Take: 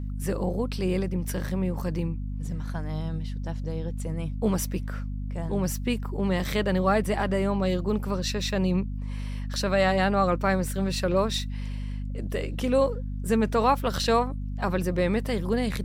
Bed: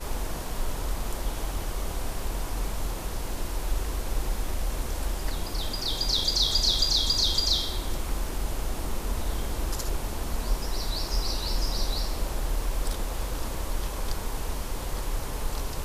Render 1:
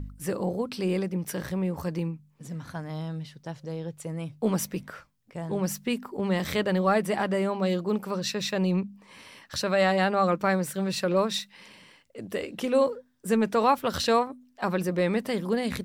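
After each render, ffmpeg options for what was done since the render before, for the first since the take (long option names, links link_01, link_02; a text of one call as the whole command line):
ffmpeg -i in.wav -af "bandreject=frequency=50:width_type=h:width=4,bandreject=frequency=100:width_type=h:width=4,bandreject=frequency=150:width_type=h:width=4,bandreject=frequency=200:width_type=h:width=4,bandreject=frequency=250:width_type=h:width=4" out.wav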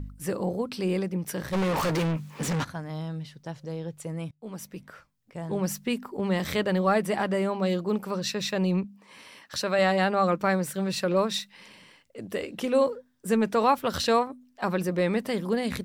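ffmpeg -i in.wav -filter_complex "[0:a]asplit=3[link_01][link_02][link_03];[link_01]afade=type=out:start_time=1.52:duration=0.02[link_04];[link_02]asplit=2[link_05][link_06];[link_06]highpass=frequency=720:poles=1,volume=37dB,asoftclip=type=tanh:threshold=-19.5dB[link_07];[link_05][link_07]amix=inputs=2:normalize=0,lowpass=frequency=4300:poles=1,volume=-6dB,afade=type=in:start_time=1.52:duration=0.02,afade=type=out:start_time=2.63:duration=0.02[link_08];[link_03]afade=type=in:start_time=2.63:duration=0.02[link_09];[link_04][link_08][link_09]amix=inputs=3:normalize=0,asettb=1/sr,asplit=3[link_10][link_11][link_12];[link_10]atrim=end=8.844[link_13];[link_11]atrim=start=8.84:end=9.79,asetpts=PTS-STARTPTS,afade=type=in:duration=0.004:curve=qsin,afade=type=out:start_time=0.946:duration=0.004:curve=qsin,highpass=frequency=190:poles=1[link_14];[link_12]atrim=start=9.786[link_15];[link_13][link_14]acrossfade=duration=0.004:curve1=hsin:curve2=qsin[link_16];[link_16][link_15]acrossfade=duration=0.004:curve1=qsin:curve2=hsin,asplit=2[link_17][link_18];[link_17]atrim=end=4.31,asetpts=PTS-STARTPTS,afade=type=out:start_time=4.306:duration=0.004:curve=hsin:silence=0.0630957[link_19];[link_18]atrim=start=4.31,asetpts=PTS-STARTPTS,afade=type=in:duration=1.21:silence=0.0630957[link_20];[link_19][link_20]concat=n=2:v=0:a=1" out.wav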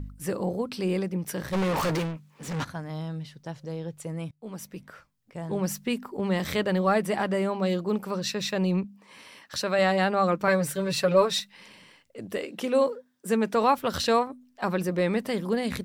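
ffmpeg -i in.wav -filter_complex "[0:a]asettb=1/sr,asplit=3[link_01][link_02][link_03];[link_01]atrim=end=10.474[link_04];[link_02]atrim=start=10.47:end=11.4,asetpts=PTS-STARTPTS,afade=type=in:duration=0.004:curve=qsin,afade=type=out:start_time=0.926:duration=0.004:curve=qsin,aecho=1:1:7.1:0.92,atrim=end_sample=41013[link_05];[link_03]atrim=start=11.396[link_06];[link_04][link_05]acrossfade=duration=0.004:curve1=hsin:curve2=qsin[link_07];[link_07][link_06]acrossfade=duration=0.004:curve1=qsin:curve2=hsin,asettb=1/sr,asplit=3[link_08][link_09][link_10];[link_08]atrim=end=12.374[link_11];[link_09]atrim=start=12.37:end=13.54,asetpts=PTS-STARTPTS,afade=type=in:duration=0.004:curve=qsin,afade=type=out:start_time=1.166:duration=0.004:curve=qsin,highpass=180[link_12];[link_10]atrim=start=13.536[link_13];[link_11][link_12]acrossfade=duration=0.004:curve1=hsin:curve2=qsin[link_14];[link_14][link_13]acrossfade=duration=0.004:curve1=qsin:curve2=hsin,asplit=3[link_15][link_16][link_17];[link_15]atrim=end=2.2,asetpts=PTS-STARTPTS,afade=type=out:start_time=1.94:duration=0.26:silence=0.199526[link_18];[link_16]atrim=start=2.2:end=2.4,asetpts=PTS-STARTPTS,volume=-14dB[link_19];[link_17]atrim=start=2.4,asetpts=PTS-STARTPTS,afade=type=in:duration=0.26:silence=0.199526[link_20];[link_18][link_19][link_20]concat=n=3:v=0:a=1" out.wav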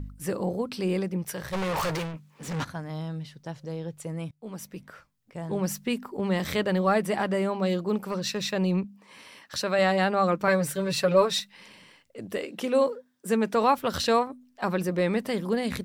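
ffmpeg -i in.wav -filter_complex "[0:a]asettb=1/sr,asplit=3[link_01][link_02][link_03];[link_01]atrim=end=1.224[link_04];[link_02]atrim=start=1.22:end=2.14,asetpts=PTS-STARTPTS,afade=type=in:duration=0.004:curve=qsin,afade=type=out:start_time=0.916:duration=0.004:curve=qsin,equalizer=frequency=260:width=1.5:gain=-10[link_05];[link_03]atrim=start=2.136[link_06];[link_04][link_05]acrossfade=duration=0.004:curve1=hsin:curve2=qsin[link_07];[link_07][link_06]acrossfade=duration=0.004:curve1=qsin:curve2=hsin,asettb=1/sr,asplit=3[link_08][link_09][link_10];[link_08]atrim=end=8.014[link_11];[link_09]atrim=start=8.01:end=8.46,asetpts=PTS-STARTPTS,afade=type=in:duration=0.004:curve=qsin,afade=type=out:start_time=0.446:duration=0.004:curve=qsin,volume=22.5dB,asoftclip=hard,volume=-22.5dB[link_12];[link_10]atrim=start=8.456[link_13];[link_11][link_12]acrossfade=duration=0.004:curve1=hsin:curve2=qsin[link_14];[link_14][link_13]acrossfade=duration=0.004:curve1=qsin:curve2=hsin" out.wav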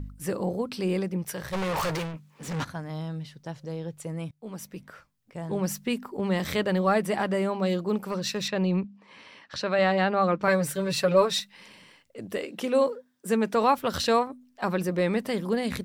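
ffmpeg -i in.wav -filter_complex "[0:a]asettb=1/sr,asplit=3[link_01][link_02][link_03];[link_01]atrim=end=8.484[link_04];[link_02]atrim=start=8.48:end=10.43,asetpts=PTS-STARTPTS,afade=type=in:duration=0.004:curve=qsin,afade=type=out:start_time=1.946:duration=0.004:curve=qsin,lowpass=4400[link_05];[link_03]atrim=start=10.426[link_06];[link_04][link_05]acrossfade=duration=0.004:curve1=hsin:curve2=qsin[link_07];[link_07][link_06]acrossfade=duration=0.004:curve1=qsin:curve2=hsin" out.wav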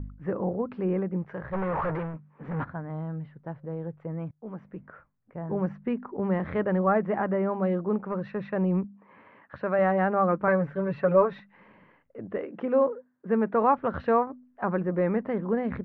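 ffmpeg -i in.wav -af "lowpass=frequency=1700:width=0.5412,lowpass=frequency=1700:width=1.3066" out.wav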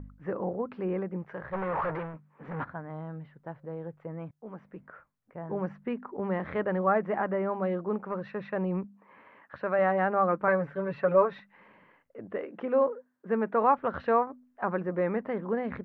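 ffmpeg -i in.wav -af "lowshelf=frequency=280:gain=-8.5" out.wav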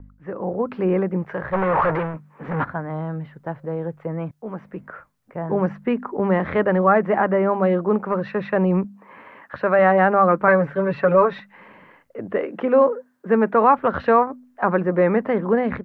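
ffmpeg -i in.wav -filter_complex "[0:a]acrossover=split=310|1000[link_01][link_02][link_03];[link_02]alimiter=limit=-22.5dB:level=0:latency=1[link_04];[link_01][link_04][link_03]amix=inputs=3:normalize=0,dynaudnorm=framelen=350:gausssize=3:maxgain=11.5dB" out.wav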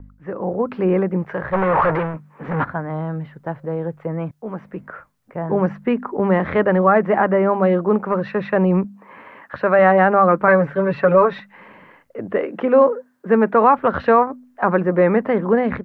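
ffmpeg -i in.wav -af "volume=2.5dB,alimiter=limit=-3dB:level=0:latency=1" out.wav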